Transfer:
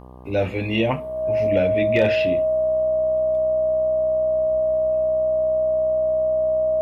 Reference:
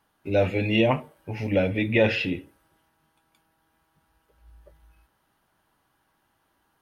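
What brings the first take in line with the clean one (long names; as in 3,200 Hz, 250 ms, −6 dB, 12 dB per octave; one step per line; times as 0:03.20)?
clipped peaks rebuilt −9 dBFS
hum removal 62.9 Hz, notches 19
notch filter 630 Hz, Q 30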